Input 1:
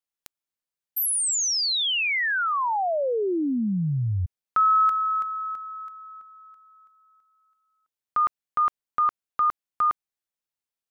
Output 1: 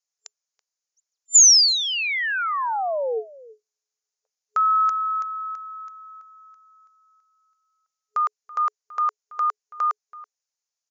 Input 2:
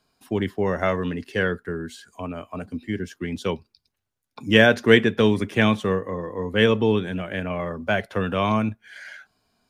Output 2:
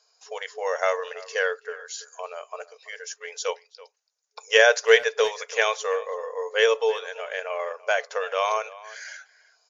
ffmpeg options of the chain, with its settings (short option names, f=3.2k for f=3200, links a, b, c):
-filter_complex "[0:a]aexciter=amount=7.3:drive=1.3:freq=4.9k,afftfilt=real='re*between(b*sr/4096,420,7200)':imag='im*between(b*sr/4096,420,7200)':win_size=4096:overlap=0.75,asplit=2[a][b];[b]adelay=330,highpass=300,lowpass=3.4k,asoftclip=type=hard:threshold=-10.5dB,volume=-19dB[c];[a][c]amix=inputs=2:normalize=0"